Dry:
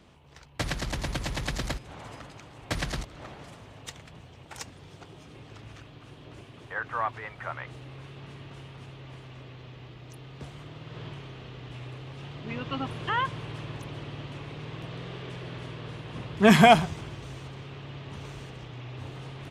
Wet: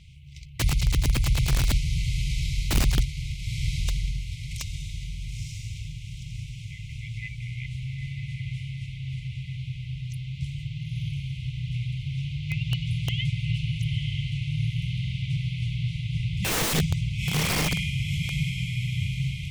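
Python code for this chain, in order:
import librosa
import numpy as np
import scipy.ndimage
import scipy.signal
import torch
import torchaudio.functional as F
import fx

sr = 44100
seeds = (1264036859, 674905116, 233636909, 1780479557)

y = fx.brickwall_bandstop(x, sr, low_hz=170.0, high_hz=2000.0)
y = fx.high_shelf(y, sr, hz=6700.0, db=3.0)
y = fx.echo_diffused(y, sr, ms=926, feedback_pct=45, wet_db=-4.5)
y = (np.mod(10.0 ** (25.0 / 20.0) * y + 1.0, 2.0) - 1.0) / 10.0 ** (25.0 / 20.0)
y = fx.tilt_eq(y, sr, slope=-1.5)
y = y * librosa.db_to_amplitude(7.0)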